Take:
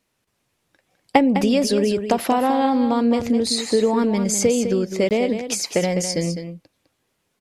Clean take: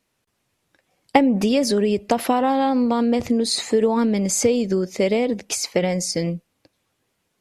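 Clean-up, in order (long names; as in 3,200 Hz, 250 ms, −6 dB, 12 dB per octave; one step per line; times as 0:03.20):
repair the gap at 0:05.09, 18 ms
echo removal 205 ms −9 dB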